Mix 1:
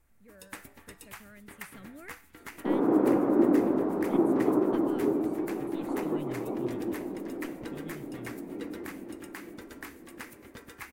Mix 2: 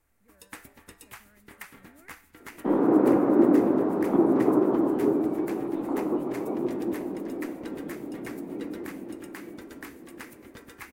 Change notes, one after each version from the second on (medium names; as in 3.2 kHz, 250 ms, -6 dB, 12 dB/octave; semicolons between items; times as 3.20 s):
speech -9.0 dB; second sound +3.5 dB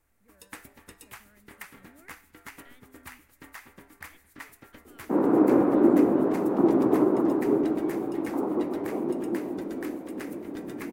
second sound: entry +2.45 s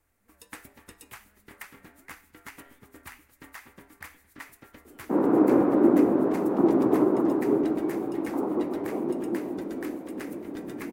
speech -8.0 dB